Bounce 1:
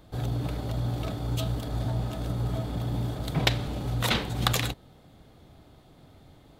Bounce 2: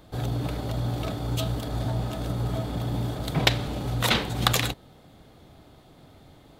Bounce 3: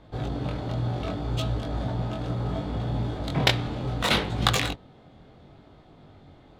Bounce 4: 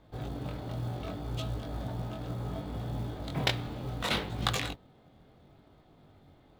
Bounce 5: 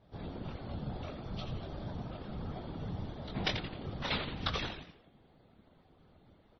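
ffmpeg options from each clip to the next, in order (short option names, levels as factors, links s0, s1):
-af "lowshelf=f=160:g=-4,volume=1.5"
-af "adynamicsmooth=sensitivity=3:basefreq=4200,flanger=delay=19:depth=4.5:speed=0.68,volume=1.5"
-af "acrusher=bits=7:mode=log:mix=0:aa=0.000001,volume=0.422"
-filter_complex "[0:a]asplit=6[s0][s1][s2][s3][s4][s5];[s1]adelay=86,afreqshift=-130,volume=0.398[s6];[s2]adelay=172,afreqshift=-260,volume=0.176[s7];[s3]adelay=258,afreqshift=-390,volume=0.0767[s8];[s4]adelay=344,afreqshift=-520,volume=0.0339[s9];[s5]adelay=430,afreqshift=-650,volume=0.015[s10];[s0][s6][s7][s8][s9][s10]amix=inputs=6:normalize=0,afftfilt=real='hypot(re,im)*cos(2*PI*random(0))':imag='hypot(re,im)*sin(2*PI*random(1))':win_size=512:overlap=0.75,volume=1.19" -ar 24000 -c:a libmp3lame -b:a 24k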